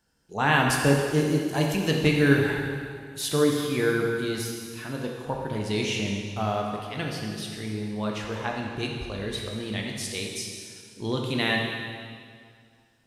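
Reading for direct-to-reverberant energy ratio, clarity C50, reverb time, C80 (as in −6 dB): −0.5 dB, 1.5 dB, 2.1 s, 3.5 dB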